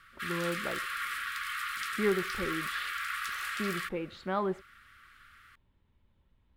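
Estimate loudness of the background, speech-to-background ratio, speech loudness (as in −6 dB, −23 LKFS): −35.0 LKFS, −1.0 dB, −36.0 LKFS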